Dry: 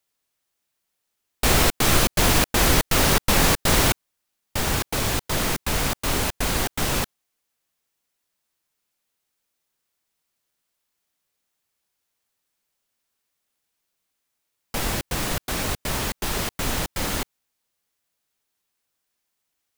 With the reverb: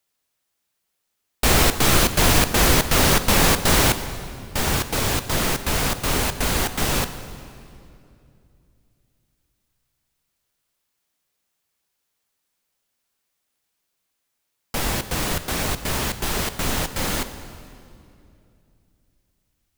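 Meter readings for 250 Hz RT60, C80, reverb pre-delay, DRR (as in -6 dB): 3.3 s, 12.0 dB, 9 ms, 10.0 dB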